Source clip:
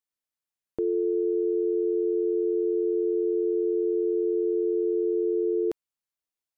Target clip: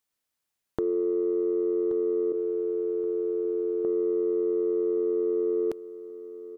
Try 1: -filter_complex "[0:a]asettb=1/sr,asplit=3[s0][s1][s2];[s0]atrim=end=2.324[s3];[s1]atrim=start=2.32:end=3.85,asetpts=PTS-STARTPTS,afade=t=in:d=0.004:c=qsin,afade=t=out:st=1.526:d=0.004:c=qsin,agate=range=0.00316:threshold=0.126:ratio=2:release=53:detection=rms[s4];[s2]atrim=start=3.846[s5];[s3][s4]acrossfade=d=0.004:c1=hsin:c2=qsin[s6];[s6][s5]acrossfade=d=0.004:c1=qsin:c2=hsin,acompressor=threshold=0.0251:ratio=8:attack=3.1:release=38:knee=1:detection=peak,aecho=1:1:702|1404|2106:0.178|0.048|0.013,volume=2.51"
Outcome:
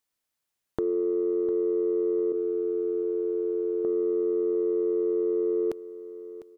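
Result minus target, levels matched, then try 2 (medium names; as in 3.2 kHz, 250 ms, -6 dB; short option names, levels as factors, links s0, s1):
echo 425 ms early
-filter_complex "[0:a]asettb=1/sr,asplit=3[s0][s1][s2];[s0]atrim=end=2.324[s3];[s1]atrim=start=2.32:end=3.85,asetpts=PTS-STARTPTS,afade=t=in:d=0.004:c=qsin,afade=t=out:st=1.526:d=0.004:c=qsin,agate=range=0.00316:threshold=0.126:ratio=2:release=53:detection=rms[s4];[s2]atrim=start=3.846[s5];[s3][s4]acrossfade=d=0.004:c1=hsin:c2=qsin[s6];[s6][s5]acrossfade=d=0.004:c1=qsin:c2=hsin,acompressor=threshold=0.0251:ratio=8:attack=3.1:release=38:knee=1:detection=peak,aecho=1:1:1127|2254|3381:0.178|0.048|0.013,volume=2.51"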